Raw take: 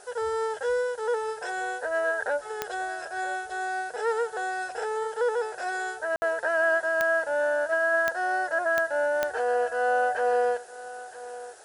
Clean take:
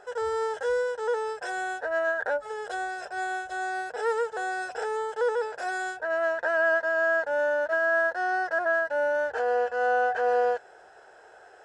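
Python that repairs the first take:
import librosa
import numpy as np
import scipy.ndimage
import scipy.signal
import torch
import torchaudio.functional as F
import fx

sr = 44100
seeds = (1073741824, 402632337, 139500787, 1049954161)

y = fx.fix_declick_ar(x, sr, threshold=10.0)
y = fx.fix_ambience(y, sr, seeds[0], print_start_s=11.13, print_end_s=11.63, start_s=6.16, end_s=6.22)
y = fx.noise_reduce(y, sr, print_start_s=11.13, print_end_s=11.63, reduce_db=10.0)
y = fx.fix_echo_inverse(y, sr, delay_ms=965, level_db=-16.0)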